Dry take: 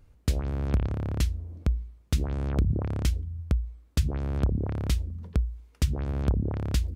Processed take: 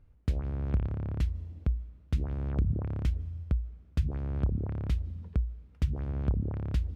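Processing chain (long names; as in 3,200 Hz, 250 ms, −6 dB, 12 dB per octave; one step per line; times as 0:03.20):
bass and treble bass +4 dB, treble −13 dB
on a send: convolution reverb RT60 2.5 s, pre-delay 110 ms, DRR 22 dB
on the sum: level −7 dB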